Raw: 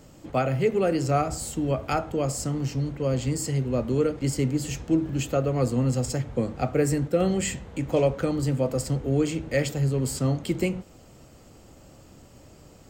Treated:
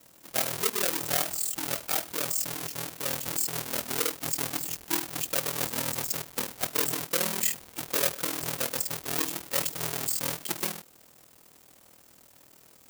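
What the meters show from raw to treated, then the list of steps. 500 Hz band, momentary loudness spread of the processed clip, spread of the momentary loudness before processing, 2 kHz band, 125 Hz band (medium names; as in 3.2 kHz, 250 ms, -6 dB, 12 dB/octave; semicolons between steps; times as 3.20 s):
-11.5 dB, 5 LU, 4 LU, +1.5 dB, -18.0 dB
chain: square wave that keeps the level; ring modulator 20 Hz; RIAA curve recording; trim -8 dB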